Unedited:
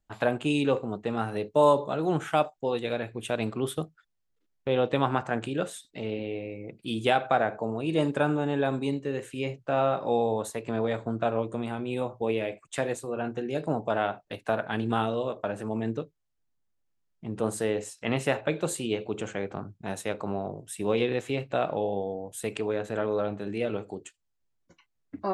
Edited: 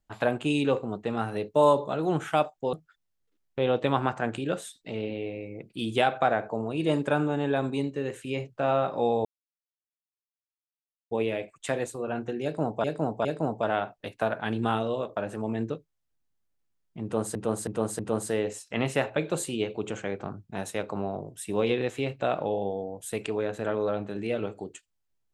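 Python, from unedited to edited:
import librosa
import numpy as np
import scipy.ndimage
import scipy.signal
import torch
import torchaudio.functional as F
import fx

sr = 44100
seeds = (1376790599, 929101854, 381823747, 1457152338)

y = fx.edit(x, sr, fx.cut(start_s=2.73, length_s=1.09),
    fx.silence(start_s=10.34, length_s=1.86),
    fx.repeat(start_s=13.52, length_s=0.41, count=3),
    fx.repeat(start_s=17.3, length_s=0.32, count=4), tone=tone)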